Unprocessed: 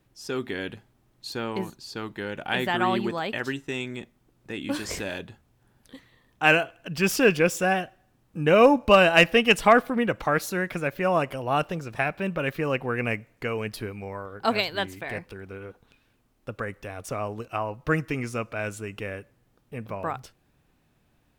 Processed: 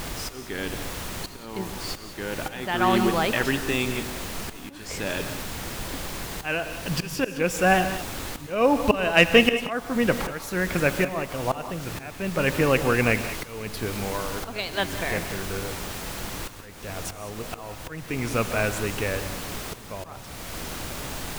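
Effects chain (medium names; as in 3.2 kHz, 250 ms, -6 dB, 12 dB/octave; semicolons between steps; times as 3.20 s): added noise pink -39 dBFS; slow attack 531 ms; gated-style reverb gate 220 ms rising, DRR 9.5 dB; trim +5.5 dB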